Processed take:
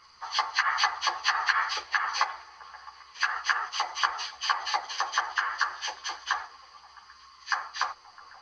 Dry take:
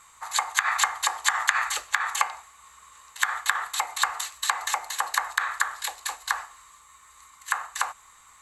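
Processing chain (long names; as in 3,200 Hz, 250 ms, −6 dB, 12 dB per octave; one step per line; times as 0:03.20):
hearing-aid frequency compression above 1,800 Hz 1.5 to 1
parametric band 360 Hz +7 dB 0.5 octaves
echo through a band-pass that steps 132 ms, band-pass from 150 Hz, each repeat 0.7 octaves, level −8.5 dB
string-ensemble chorus
level +1.5 dB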